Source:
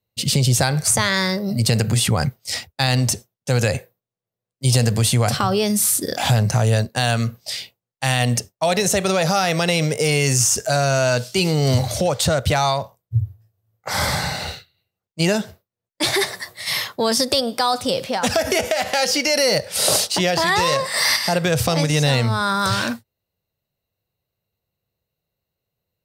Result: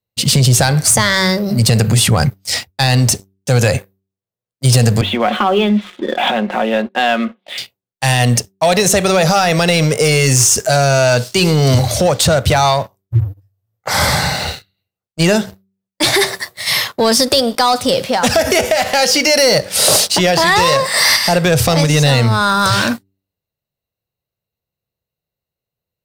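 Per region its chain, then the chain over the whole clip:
0:05.01–0:07.58: Chebyshev band-pass filter 210–3,500 Hz, order 5 + comb filter 5.5 ms, depth 41%
whole clip: hum removal 96.46 Hz, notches 4; leveller curve on the samples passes 2

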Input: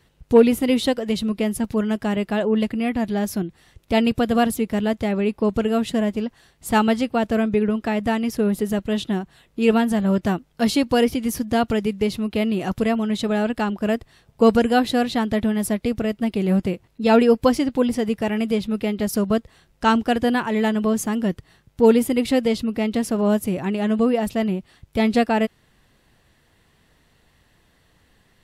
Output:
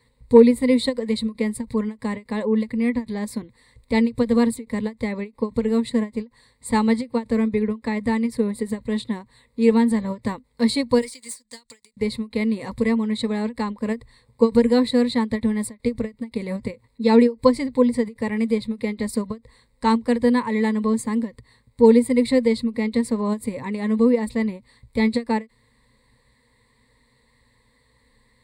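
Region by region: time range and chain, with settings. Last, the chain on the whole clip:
0:11.01–0:11.97: resonant band-pass 7,100 Hz, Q 2 + leveller curve on the samples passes 3
whole clip: EQ curve with evenly spaced ripples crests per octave 0.97, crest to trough 17 dB; every ending faded ahead of time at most 310 dB per second; level −5.5 dB

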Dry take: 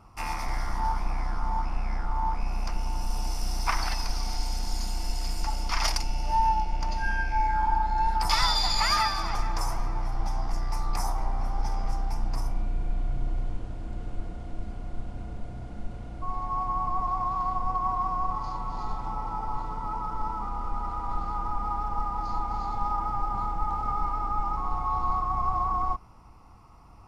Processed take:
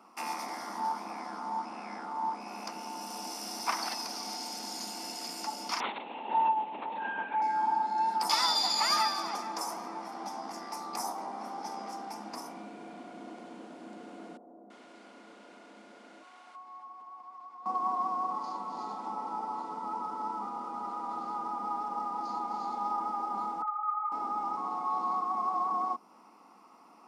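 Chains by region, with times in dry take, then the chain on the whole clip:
0:05.80–0:07.42: high-pass filter 220 Hz 6 dB per octave + linear-prediction vocoder at 8 kHz whisper
0:14.37–0:17.66: meter weighting curve A + downward compressor 8 to 1, threshold −44 dBFS + multiband delay without the direct sound lows, highs 330 ms, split 800 Hz
0:23.62–0:24.12: three sine waves on the formant tracks + high-pass filter 1,000 Hz 6 dB per octave + flutter between parallel walls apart 10.4 metres, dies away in 0.45 s
whole clip: Butterworth high-pass 210 Hz 48 dB per octave; dynamic equaliser 1,900 Hz, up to −6 dB, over −44 dBFS, Q 0.81

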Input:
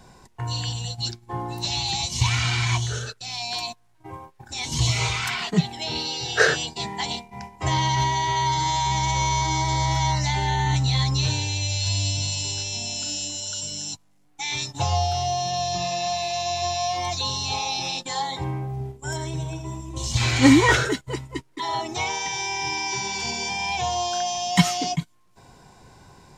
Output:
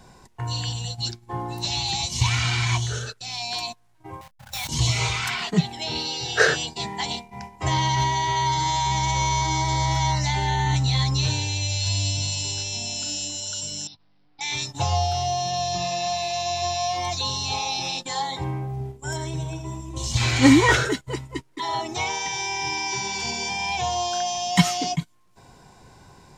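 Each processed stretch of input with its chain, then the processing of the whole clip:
0:04.21–0:04.69: each half-wave held at its own peak + elliptic band-stop filter 210–550 Hz + output level in coarse steps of 15 dB
0:13.87–0:14.41: downward compressor 5 to 1, threshold −42 dBFS + bad sample-rate conversion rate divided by 4×, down none, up filtered
whole clip: no processing

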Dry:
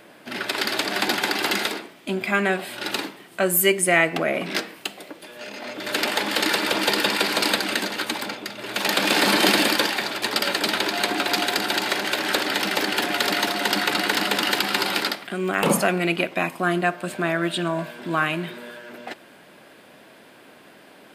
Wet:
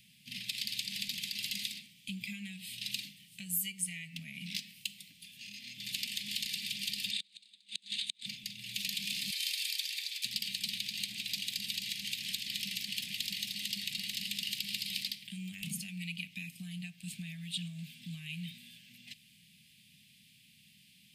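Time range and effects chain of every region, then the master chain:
0:07.11–0:08.26: gate with flip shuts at −13 dBFS, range −35 dB + loudspeaker in its box 210–9,400 Hz, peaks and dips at 890 Hz −8 dB, 1,500 Hz +6 dB, 3,700 Hz +10 dB, 5,500 Hz −8 dB, 8,500 Hz +5 dB
0:09.30–0:10.25: Butterworth high-pass 790 Hz 48 dB per octave + notch filter 2,900 Hz, Q 17
whole clip: downward compressor, threshold −24 dBFS; inverse Chebyshev band-stop filter 320–1,500 Hz, stop band 40 dB; level −5.5 dB

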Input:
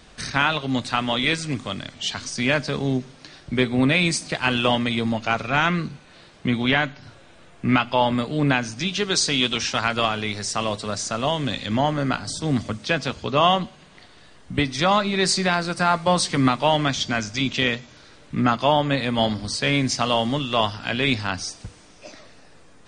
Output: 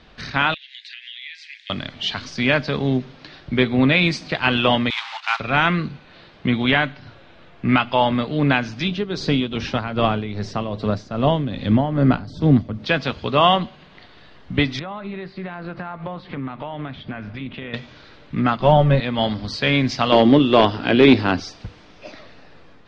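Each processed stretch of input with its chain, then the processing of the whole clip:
0:00.54–0:01.70: Butterworth high-pass 1,700 Hz 96 dB per octave + high-shelf EQ 3,000 Hz −6 dB + downward compressor 10 to 1, threshold −35 dBFS
0:04.90–0:05.40: one scale factor per block 3 bits + elliptic high-pass filter 860 Hz, stop band 50 dB
0:08.88–0:12.86: tilt shelving filter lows +7 dB, about 800 Hz + amplitude tremolo 2.5 Hz, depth 67%
0:14.79–0:17.74: downward compressor 10 to 1, threshold −28 dBFS + high-frequency loss of the air 470 metres + highs frequency-modulated by the lows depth 0.12 ms
0:18.60–0:19.00: one scale factor per block 5 bits + spectral tilt −3.5 dB per octave + comb filter 5.3 ms, depth 67%
0:20.12–0:21.40: parametric band 350 Hz +14.5 dB 1.3 octaves + hard clipping −8 dBFS
whole clip: low-pass filter 4,400 Hz 24 dB per octave; automatic gain control gain up to 4 dB

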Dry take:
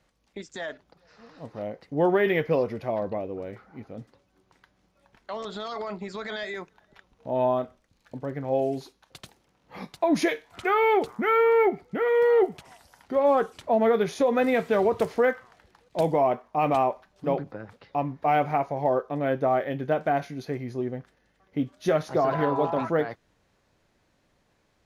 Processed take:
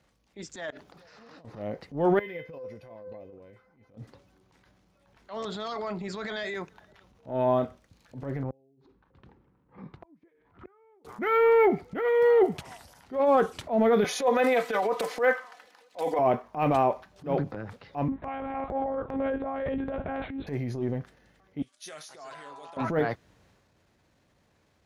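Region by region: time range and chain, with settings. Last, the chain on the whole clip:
0:00.70–0:01.45: mains-hum notches 60/120/180/240/300/360/420 Hz + compressor whose output falls as the input rises −53 dBFS + low-shelf EQ 120 Hz −10.5 dB
0:02.19–0:03.97: downward compressor 2 to 1, threshold −28 dBFS + tuned comb filter 510 Hz, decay 0.29 s, mix 90%
0:08.43–0:11.05: low-pass filter 1,100 Hz + parametric band 670 Hz −11.5 dB 0.6 octaves + gate with flip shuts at −23 dBFS, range −41 dB
0:14.04–0:16.19: high-pass filter 530 Hz + comb filter 4 ms, depth 78%
0:18.08–0:20.47: compressor whose output falls as the input rises −26 dBFS, ratio −0.5 + one-pitch LPC vocoder at 8 kHz 270 Hz + low-pass filter 2,100 Hz 6 dB per octave
0:21.62–0:22.77: first difference + bad sample-rate conversion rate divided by 2×, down none, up filtered
whole clip: high-pass filter 64 Hz; low-shelf EQ 130 Hz +7.5 dB; transient designer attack −11 dB, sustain +5 dB

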